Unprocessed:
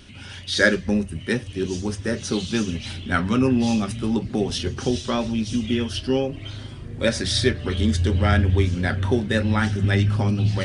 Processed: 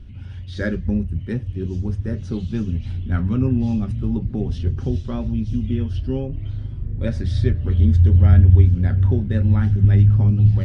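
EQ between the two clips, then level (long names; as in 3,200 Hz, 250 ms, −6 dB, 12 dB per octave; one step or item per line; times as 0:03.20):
RIAA equalisation playback
low-shelf EQ 150 Hz +7.5 dB
−10.5 dB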